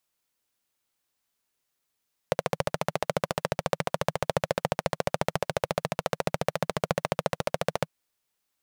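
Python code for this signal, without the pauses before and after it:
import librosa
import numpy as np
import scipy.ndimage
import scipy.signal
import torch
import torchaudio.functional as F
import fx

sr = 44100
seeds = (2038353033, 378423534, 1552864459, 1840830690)

y = fx.engine_single(sr, seeds[0], length_s=5.57, rpm=1700, resonances_hz=(160.0, 540.0))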